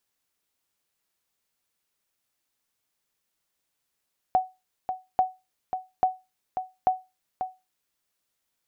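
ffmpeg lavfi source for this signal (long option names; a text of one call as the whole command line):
ffmpeg -f lavfi -i "aevalsrc='0.224*(sin(2*PI*746*mod(t,0.84))*exp(-6.91*mod(t,0.84)/0.24)+0.376*sin(2*PI*746*max(mod(t,0.84)-0.54,0))*exp(-6.91*max(mod(t,0.84)-0.54,0)/0.24))':duration=3.36:sample_rate=44100" out.wav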